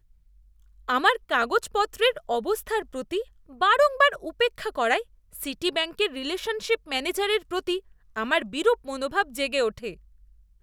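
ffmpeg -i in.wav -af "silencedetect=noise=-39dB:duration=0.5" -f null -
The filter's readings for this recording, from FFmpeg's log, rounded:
silence_start: 0.00
silence_end: 0.88 | silence_duration: 0.88
silence_start: 9.94
silence_end: 10.62 | silence_duration: 0.68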